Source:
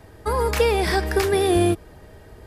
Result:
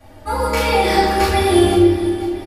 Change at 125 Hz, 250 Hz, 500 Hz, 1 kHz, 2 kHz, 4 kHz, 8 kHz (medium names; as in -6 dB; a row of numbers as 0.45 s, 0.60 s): +4.0 dB, +8.5 dB, +4.0 dB, +8.5 dB, +5.0 dB, +7.0 dB, +3.5 dB